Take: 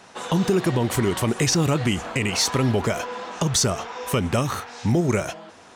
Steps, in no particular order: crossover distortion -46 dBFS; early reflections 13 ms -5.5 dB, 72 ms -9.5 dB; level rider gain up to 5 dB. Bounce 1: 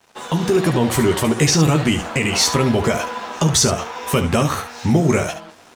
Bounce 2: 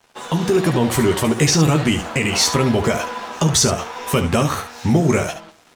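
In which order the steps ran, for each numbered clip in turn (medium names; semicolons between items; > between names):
early reflections > level rider > crossover distortion; crossover distortion > early reflections > level rider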